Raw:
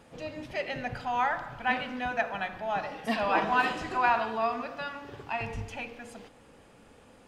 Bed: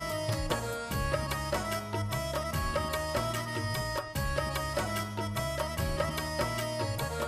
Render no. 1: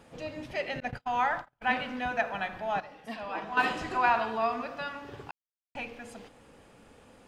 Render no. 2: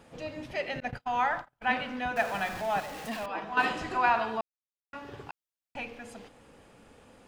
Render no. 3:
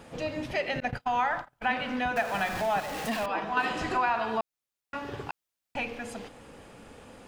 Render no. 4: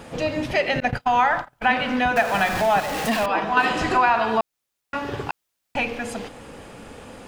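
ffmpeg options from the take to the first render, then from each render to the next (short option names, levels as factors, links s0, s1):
-filter_complex "[0:a]asettb=1/sr,asplit=3[s0][s1][s2];[s0]atrim=end=0.804[s3];[s1]atrim=start=0.8:end=1.62,asetpts=PTS-STARTPTS,afade=t=in:d=0.004:c=qsin,afade=t=out:st=0.816:d=0.004:c=qsin,agate=range=0.0126:threshold=0.0126:ratio=16:release=100:detection=peak[s4];[s2]atrim=start=1.616[s5];[s3][s4]acrossfade=d=0.004:c1=hsin:c2=qsin[s6];[s6][s5]acrossfade=d=0.004:c1=qsin:c2=hsin,asplit=5[s7][s8][s9][s10][s11];[s7]atrim=end=2.802[s12];[s8]atrim=start=2.798:end=3.572,asetpts=PTS-STARTPTS,volume=0.316[s13];[s9]atrim=start=3.568:end=5.31,asetpts=PTS-STARTPTS,afade=t=out:st=1.738:d=0.004:c=hsin[s14];[s10]atrim=start=5.31:end=5.75,asetpts=PTS-STARTPTS,volume=0[s15];[s11]atrim=start=5.75,asetpts=PTS-STARTPTS,afade=t=in:d=0.004:c=hsin[s16];[s12][s13]acrossfade=d=0.004:c1=hsin:c2=hsin[s17];[s14][s15][s16]concat=n=3:v=0:a=1[s18];[s17][s18]acrossfade=d=0.004:c1=hsin:c2=hsin"
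-filter_complex "[0:a]asettb=1/sr,asplit=3[s0][s1][s2];[s0]atrim=end=2.164[s3];[s1]atrim=start=2.16:end=3.26,asetpts=PTS-STARTPTS,afade=t=in:d=0.004:c=qsin,afade=t=out:st=1.096:d=0.004:c=qsin,aeval=exprs='val(0)+0.5*0.0141*sgn(val(0))':c=same[s4];[s2]atrim=start=3.256[s5];[s3][s4]acrossfade=d=0.004:c1=hsin:c2=qsin[s6];[s6][s5]acrossfade=d=0.004:c1=qsin:c2=hsin,asplit=3[s7][s8][s9];[s7]atrim=end=4.41,asetpts=PTS-STARTPTS,afade=t=out:st=4.406:d=0.004:c=hsin[s10];[s8]atrim=start=4.41:end=4.93,asetpts=PTS-STARTPTS,volume=0[s11];[s9]atrim=start=4.93,asetpts=PTS-STARTPTS,afade=t=in:d=0.004:c=hsin[s12];[s10][s11][s12]concat=n=3:v=0:a=1"
-filter_complex "[0:a]asplit=2[s0][s1];[s1]alimiter=limit=0.119:level=0:latency=1:release=277,volume=1.12[s2];[s0][s2]amix=inputs=2:normalize=0,acompressor=threshold=0.0398:ratio=2"
-af "volume=2.66"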